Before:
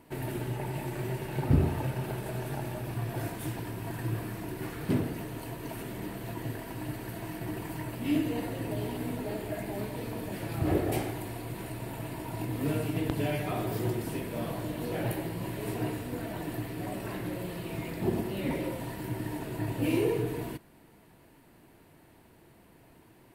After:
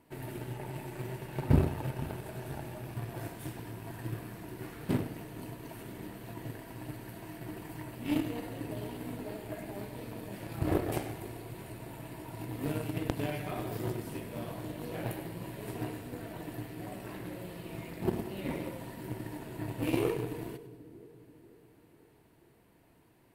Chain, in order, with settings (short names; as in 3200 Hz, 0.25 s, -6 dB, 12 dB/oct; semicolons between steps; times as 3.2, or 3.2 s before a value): split-band echo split 530 Hz, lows 0.488 s, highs 99 ms, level -13 dB; added harmonics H 6 -31 dB, 7 -22 dB, 8 -29 dB, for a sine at -10.5 dBFS